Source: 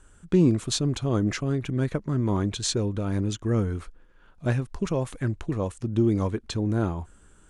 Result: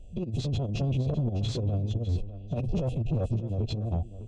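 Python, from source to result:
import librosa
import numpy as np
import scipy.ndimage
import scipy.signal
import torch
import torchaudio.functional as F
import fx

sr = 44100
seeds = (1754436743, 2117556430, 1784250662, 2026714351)

y = fx.spec_dilate(x, sr, span_ms=60)
y = scipy.signal.sosfilt(scipy.signal.cheby1(5, 1.0, [750.0, 2500.0], 'bandstop', fs=sr, output='sos'), y)
y = fx.peak_eq(y, sr, hz=110.0, db=5.5, octaves=0.43)
y = fx.hum_notches(y, sr, base_hz=60, count=3)
y = y + 0.47 * np.pad(y, (int(1.5 * sr / 1000.0), 0))[:len(y)]
y = fx.over_compress(y, sr, threshold_db=-24.0, ratio=-0.5)
y = fx.stretch_vocoder(y, sr, factor=0.57)
y = 10.0 ** (-21.0 / 20.0) * np.tanh(y / 10.0 ** (-21.0 / 20.0))
y = fx.spacing_loss(y, sr, db_at_10k=24)
y = y + 10.0 ** (-13.5 / 20.0) * np.pad(y, (int(604 * sr / 1000.0), 0))[:len(y)]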